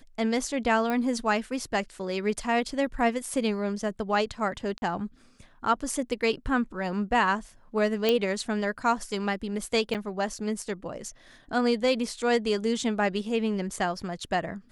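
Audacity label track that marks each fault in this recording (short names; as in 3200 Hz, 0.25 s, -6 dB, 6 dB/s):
0.900000	0.900000	pop -17 dBFS
4.780000	4.820000	gap 41 ms
8.090000	8.090000	pop -10 dBFS
9.940000	9.950000	gap 7.4 ms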